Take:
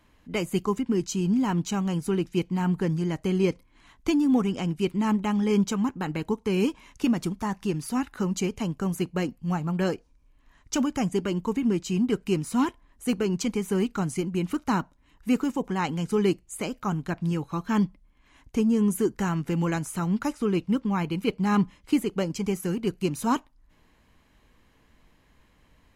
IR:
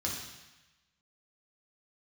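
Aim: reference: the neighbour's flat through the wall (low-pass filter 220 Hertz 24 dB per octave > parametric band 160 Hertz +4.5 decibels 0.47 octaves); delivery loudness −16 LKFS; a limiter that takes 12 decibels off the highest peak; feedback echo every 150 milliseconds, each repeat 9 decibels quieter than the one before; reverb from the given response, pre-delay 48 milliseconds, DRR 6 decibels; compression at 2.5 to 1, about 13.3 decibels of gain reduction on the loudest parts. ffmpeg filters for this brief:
-filter_complex "[0:a]acompressor=threshold=-39dB:ratio=2.5,alimiter=level_in=11dB:limit=-24dB:level=0:latency=1,volume=-11dB,aecho=1:1:150|300|450|600:0.355|0.124|0.0435|0.0152,asplit=2[link_01][link_02];[1:a]atrim=start_sample=2205,adelay=48[link_03];[link_02][link_03]afir=irnorm=-1:irlink=0,volume=-10dB[link_04];[link_01][link_04]amix=inputs=2:normalize=0,lowpass=frequency=220:width=0.5412,lowpass=frequency=220:width=1.3066,equalizer=frequency=160:width_type=o:width=0.47:gain=4.5,volume=26dB"

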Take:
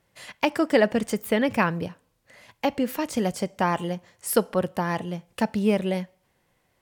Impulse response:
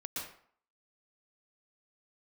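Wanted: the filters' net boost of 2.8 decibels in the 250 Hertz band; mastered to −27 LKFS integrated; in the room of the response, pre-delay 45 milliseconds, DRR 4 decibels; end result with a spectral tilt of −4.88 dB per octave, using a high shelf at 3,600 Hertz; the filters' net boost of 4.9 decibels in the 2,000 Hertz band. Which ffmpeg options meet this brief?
-filter_complex "[0:a]equalizer=frequency=250:width_type=o:gain=3.5,equalizer=frequency=2000:width_type=o:gain=7,highshelf=frequency=3600:gain=-4.5,asplit=2[link_01][link_02];[1:a]atrim=start_sample=2205,adelay=45[link_03];[link_02][link_03]afir=irnorm=-1:irlink=0,volume=-5dB[link_04];[link_01][link_04]amix=inputs=2:normalize=0,volume=-4.5dB"

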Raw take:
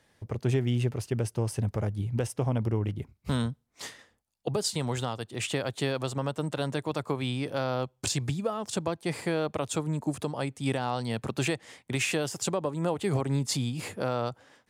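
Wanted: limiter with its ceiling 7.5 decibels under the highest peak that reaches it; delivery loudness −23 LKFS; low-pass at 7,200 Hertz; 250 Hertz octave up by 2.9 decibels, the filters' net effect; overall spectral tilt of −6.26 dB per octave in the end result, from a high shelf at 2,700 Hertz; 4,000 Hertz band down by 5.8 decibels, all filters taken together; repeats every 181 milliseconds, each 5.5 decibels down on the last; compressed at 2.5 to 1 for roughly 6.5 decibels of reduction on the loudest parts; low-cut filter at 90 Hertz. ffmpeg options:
ffmpeg -i in.wav -af "highpass=90,lowpass=7200,equalizer=frequency=250:width_type=o:gain=4,highshelf=frequency=2700:gain=-3,equalizer=frequency=4000:width_type=o:gain=-4.5,acompressor=threshold=-32dB:ratio=2.5,alimiter=level_in=2dB:limit=-24dB:level=0:latency=1,volume=-2dB,aecho=1:1:181|362|543|724|905|1086|1267:0.531|0.281|0.149|0.079|0.0419|0.0222|0.0118,volume=12.5dB" out.wav

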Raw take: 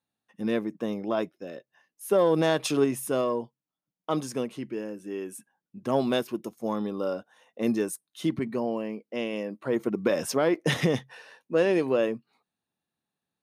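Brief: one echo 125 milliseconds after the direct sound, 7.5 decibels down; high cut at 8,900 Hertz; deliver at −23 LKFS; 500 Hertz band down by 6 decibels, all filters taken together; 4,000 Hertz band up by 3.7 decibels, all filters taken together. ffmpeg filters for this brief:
ffmpeg -i in.wav -af "lowpass=8900,equalizer=frequency=500:width_type=o:gain=-7.5,equalizer=frequency=4000:width_type=o:gain=5,aecho=1:1:125:0.422,volume=7.5dB" out.wav

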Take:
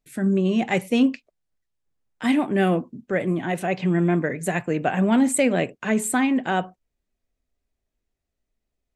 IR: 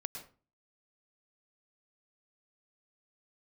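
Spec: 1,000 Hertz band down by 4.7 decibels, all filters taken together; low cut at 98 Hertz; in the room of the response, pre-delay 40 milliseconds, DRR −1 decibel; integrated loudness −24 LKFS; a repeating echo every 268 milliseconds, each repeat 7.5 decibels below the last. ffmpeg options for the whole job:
-filter_complex "[0:a]highpass=98,equalizer=frequency=1000:width_type=o:gain=-7.5,aecho=1:1:268|536|804|1072|1340:0.422|0.177|0.0744|0.0312|0.0131,asplit=2[link_01][link_02];[1:a]atrim=start_sample=2205,adelay=40[link_03];[link_02][link_03]afir=irnorm=-1:irlink=0,volume=2dB[link_04];[link_01][link_04]amix=inputs=2:normalize=0,volume=-4.5dB"

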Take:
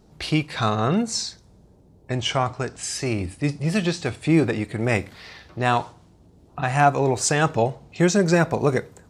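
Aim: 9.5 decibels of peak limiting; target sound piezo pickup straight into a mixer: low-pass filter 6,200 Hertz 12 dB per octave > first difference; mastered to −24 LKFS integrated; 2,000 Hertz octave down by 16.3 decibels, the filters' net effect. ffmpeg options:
ffmpeg -i in.wav -af "equalizer=frequency=2000:width_type=o:gain=-6.5,alimiter=limit=-16dB:level=0:latency=1,lowpass=6200,aderivative,volume=15.5dB" out.wav

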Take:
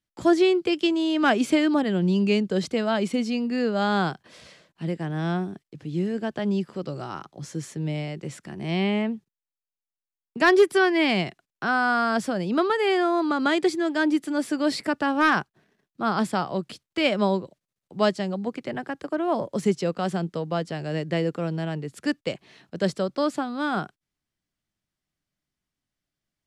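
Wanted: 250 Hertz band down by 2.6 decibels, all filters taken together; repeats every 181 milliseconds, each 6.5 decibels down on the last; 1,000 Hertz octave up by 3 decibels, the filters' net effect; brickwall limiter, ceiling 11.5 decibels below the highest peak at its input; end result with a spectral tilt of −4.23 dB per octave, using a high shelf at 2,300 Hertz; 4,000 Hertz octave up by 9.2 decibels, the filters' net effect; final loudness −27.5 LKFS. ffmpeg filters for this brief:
ffmpeg -i in.wav -af "equalizer=frequency=250:width_type=o:gain=-4,equalizer=frequency=1000:width_type=o:gain=3,highshelf=frequency=2300:gain=4,equalizer=frequency=4000:width_type=o:gain=8.5,alimiter=limit=-14.5dB:level=0:latency=1,aecho=1:1:181|362|543|724|905|1086:0.473|0.222|0.105|0.0491|0.0231|0.0109,volume=-2dB" out.wav

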